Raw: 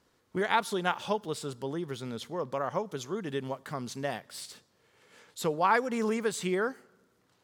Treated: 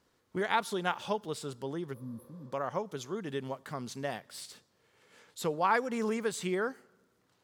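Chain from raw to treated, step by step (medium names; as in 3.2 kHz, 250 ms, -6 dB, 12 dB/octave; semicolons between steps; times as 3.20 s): spectral replace 1.96–2.44 s, 310–9700 Hz after; trim -2.5 dB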